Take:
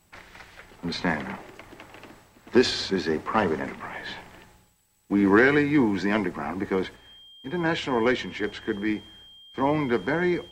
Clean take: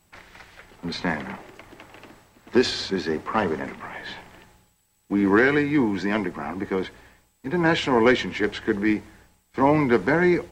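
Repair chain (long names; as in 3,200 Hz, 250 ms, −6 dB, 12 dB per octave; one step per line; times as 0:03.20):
notch filter 3,200 Hz, Q 30
level correction +5 dB, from 0:06.96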